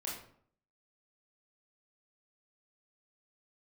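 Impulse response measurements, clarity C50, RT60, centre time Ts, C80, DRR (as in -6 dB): 3.5 dB, 0.60 s, 44 ms, 8.0 dB, -5.0 dB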